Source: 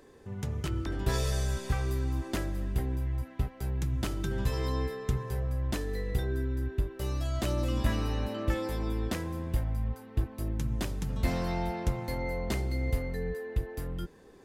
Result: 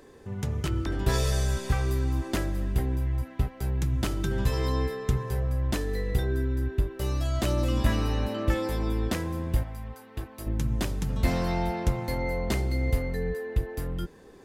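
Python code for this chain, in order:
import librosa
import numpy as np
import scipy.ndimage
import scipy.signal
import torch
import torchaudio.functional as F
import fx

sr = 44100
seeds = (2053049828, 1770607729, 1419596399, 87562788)

y = fx.low_shelf(x, sr, hz=370.0, db=-11.5, at=(9.63, 10.47))
y = F.gain(torch.from_numpy(y), 4.0).numpy()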